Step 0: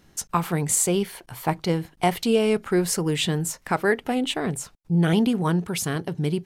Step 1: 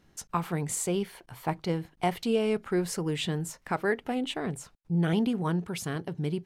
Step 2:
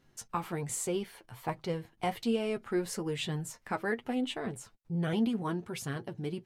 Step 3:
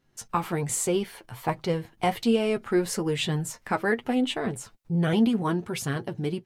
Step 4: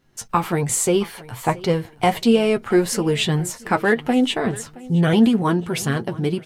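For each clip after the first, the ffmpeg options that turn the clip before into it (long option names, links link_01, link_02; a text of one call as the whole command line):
ffmpeg -i in.wav -af "highshelf=frequency=5300:gain=-6.5,volume=-6dB" out.wav
ffmpeg -i in.wav -af "flanger=delay=7.5:depth=2:regen=29:speed=1.2:shape=triangular" out.wav
ffmpeg -i in.wav -af "dynaudnorm=framelen=120:gausssize=3:maxgain=11.5dB,volume=-4dB" out.wav
ffmpeg -i in.wav -af "aecho=1:1:671|1342|2013:0.0944|0.0359|0.0136,volume=7dB" out.wav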